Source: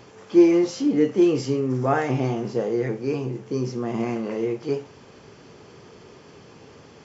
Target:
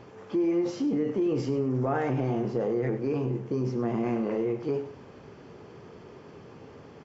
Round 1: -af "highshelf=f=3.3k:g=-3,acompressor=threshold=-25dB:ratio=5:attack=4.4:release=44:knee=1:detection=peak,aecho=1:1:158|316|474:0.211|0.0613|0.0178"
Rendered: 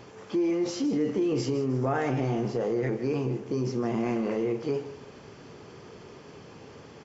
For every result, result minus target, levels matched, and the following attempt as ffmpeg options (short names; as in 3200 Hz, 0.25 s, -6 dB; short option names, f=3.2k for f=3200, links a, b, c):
echo 58 ms late; 8000 Hz band +9.0 dB
-af "highshelf=f=3.3k:g=-3,acompressor=threshold=-25dB:ratio=5:attack=4.4:release=44:knee=1:detection=peak,aecho=1:1:100|200|300:0.211|0.0613|0.0178"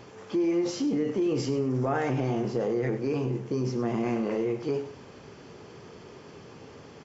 8000 Hz band +9.0 dB
-af "highshelf=f=3.3k:g=-14.5,acompressor=threshold=-25dB:ratio=5:attack=4.4:release=44:knee=1:detection=peak,aecho=1:1:100|200|300:0.211|0.0613|0.0178"